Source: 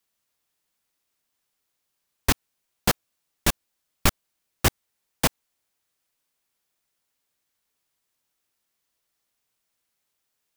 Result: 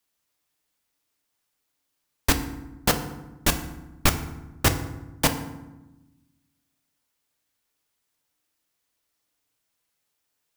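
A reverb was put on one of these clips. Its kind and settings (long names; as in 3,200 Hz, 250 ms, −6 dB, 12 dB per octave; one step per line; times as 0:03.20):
feedback delay network reverb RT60 1 s, low-frequency decay 1.6×, high-frequency decay 0.6×, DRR 6.5 dB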